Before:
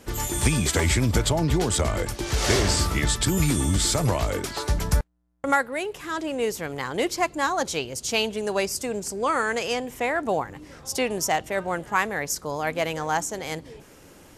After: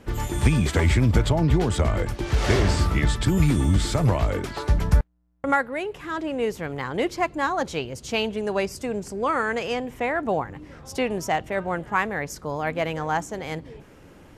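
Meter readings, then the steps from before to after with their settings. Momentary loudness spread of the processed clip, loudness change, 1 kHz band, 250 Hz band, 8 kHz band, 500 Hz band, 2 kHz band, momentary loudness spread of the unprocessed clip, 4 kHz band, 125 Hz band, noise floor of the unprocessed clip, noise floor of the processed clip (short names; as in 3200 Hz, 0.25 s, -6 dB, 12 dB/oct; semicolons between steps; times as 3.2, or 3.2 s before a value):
10 LU, +0.5 dB, 0.0 dB, +2.0 dB, -10.0 dB, +0.5 dB, -0.5 dB, 8 LU, -5.0 dB, +4.0 dB, -50 dBFS, -49 dBFS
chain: tone controls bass +4 dB, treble -11 dB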